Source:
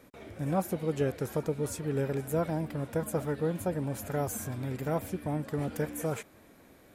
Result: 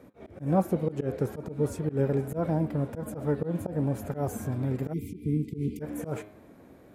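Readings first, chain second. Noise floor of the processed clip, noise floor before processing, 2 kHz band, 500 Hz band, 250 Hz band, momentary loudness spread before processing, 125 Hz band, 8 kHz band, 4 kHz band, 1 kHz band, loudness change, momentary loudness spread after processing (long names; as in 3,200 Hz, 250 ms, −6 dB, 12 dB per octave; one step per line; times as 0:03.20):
−54 dBFS, −58 dBFS, −4.5 dB, +1.0 dB, +4.0 dB, 4 LU, +4.0 dB, −6.5 dB, can't be measured, 0.0 dB, +2.5 dB, 8 LU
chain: high-pass filter 65 Hz 6 dB per octave
hum removal 104.4 Hz, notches 40
volume swells 123 ms
tilt shelving filter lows +7 dB, about 1,400 Hz
time-frequency box erased 0:04.93–0:05.81, 470–2,000 Hz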